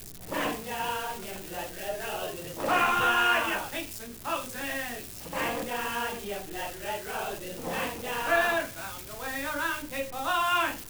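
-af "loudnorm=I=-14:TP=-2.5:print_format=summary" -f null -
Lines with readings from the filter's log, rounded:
Input Integrated:    -29.8 LUFS
Input True Peak:     -12.5 dBTP
Input LRA:             5.2 LU
Input Threshold:     -39.8 LUFS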